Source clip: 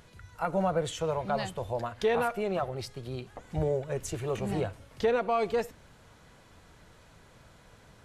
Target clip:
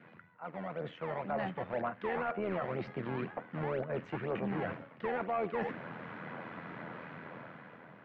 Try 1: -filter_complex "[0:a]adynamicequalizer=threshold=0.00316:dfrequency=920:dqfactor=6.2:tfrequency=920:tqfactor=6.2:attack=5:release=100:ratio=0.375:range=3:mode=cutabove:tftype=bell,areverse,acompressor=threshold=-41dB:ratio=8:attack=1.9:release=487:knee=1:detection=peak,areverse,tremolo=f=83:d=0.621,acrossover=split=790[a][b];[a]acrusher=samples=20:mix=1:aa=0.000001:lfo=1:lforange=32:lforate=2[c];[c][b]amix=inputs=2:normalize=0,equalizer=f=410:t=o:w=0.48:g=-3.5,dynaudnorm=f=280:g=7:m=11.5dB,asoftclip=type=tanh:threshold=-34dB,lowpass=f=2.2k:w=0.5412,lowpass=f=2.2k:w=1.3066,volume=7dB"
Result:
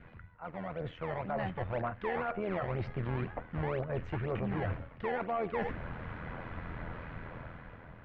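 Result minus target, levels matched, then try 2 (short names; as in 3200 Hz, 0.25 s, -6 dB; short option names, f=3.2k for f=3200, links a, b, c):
125 Hz band +5.5 dB
-filter_complex "[0:a]adynamicequalizer=threshold=0.00316:dfrequency=920:dqfactor=6.2:tfrequency=920:tqfactor=6.2:attack=5:release=100:ratio=0.375:range=3:mode=cutabove:tftype=bell,areverse,acompressor=threshold=-41dB:ratio=8:attack=1.9:release=487:knee=1:detection=peak,areverse,tremolo=f=83:d=0.621,acrossover=split=790[a][b];[a]acrusher=samples=20:mix=1:aa=0.000001:lfo=1:lforange=32:lforate=2[c];[c][b]amix=inputs=2:normalize=0,highpass=f=160:w=0.5412,highpass=f=160:w=1.3066,equalizer=f=410:t=o:w=0.48:g=-3.5,dynaudnorm=f=280:g=7:m=11.5dB,asoftclip=type=tanh:threshold=-34dB,lowpass=f=2.2k:w=0.5412,lowpass=f=2.2k:w=1.3066,volume=7dB"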